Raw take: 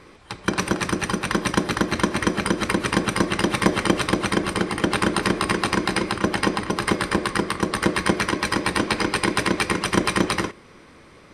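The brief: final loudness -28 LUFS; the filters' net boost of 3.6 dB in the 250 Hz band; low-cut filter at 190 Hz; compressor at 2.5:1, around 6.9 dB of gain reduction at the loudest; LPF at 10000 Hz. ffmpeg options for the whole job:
-af "highpass=190,lowpass=10k,equalizer=f=250:t=o:g=7,acompressor=threshold=-23dB:ratio=2.5,volume=-2dB"

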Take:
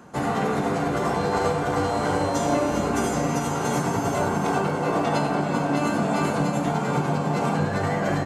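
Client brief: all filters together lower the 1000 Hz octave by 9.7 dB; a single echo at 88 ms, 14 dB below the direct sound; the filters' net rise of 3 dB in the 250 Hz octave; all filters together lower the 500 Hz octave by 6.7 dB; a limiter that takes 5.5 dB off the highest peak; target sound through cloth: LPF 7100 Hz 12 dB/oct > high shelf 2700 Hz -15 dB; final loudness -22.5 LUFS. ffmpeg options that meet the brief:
-af "equalizer=f=250:t=o:g=6.5,equalizer=f=500:t=o:g=-7.5,equalizer=f=1k:t=o:g=-8.5,alimiter=limit=-16.5dB:level=0:latency=1,lowpass=7.1k,highshelf=f=2.7k:g=-15,aecho=1:1:88:0.2,volume=4dB"

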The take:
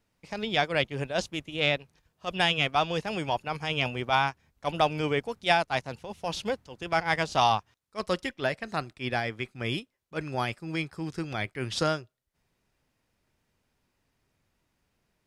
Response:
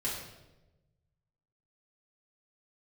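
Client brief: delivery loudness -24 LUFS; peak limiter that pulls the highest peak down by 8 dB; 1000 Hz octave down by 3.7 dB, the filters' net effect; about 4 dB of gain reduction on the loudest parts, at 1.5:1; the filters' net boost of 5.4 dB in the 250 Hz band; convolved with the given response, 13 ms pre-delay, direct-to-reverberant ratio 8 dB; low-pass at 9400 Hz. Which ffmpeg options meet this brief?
-filter_complex "[0:a]lowpass=9.4k,equalizer=f=250:t=o:g=8,equalizer=f=1k:t=o:g=-6,acompressor=threshold=-31dB:ratio=1.5,alimiter=limit=-22dB:level=0:latency=1,asplit=2[a][b];[1:a]atrim=start_sample=2205,adelay=13[c];[b][c]afir=irnorm=-1:irlink=0,volume=-12.5dB[d];[a][d]amix=inputs=2:normalize=0,volume=10dB"

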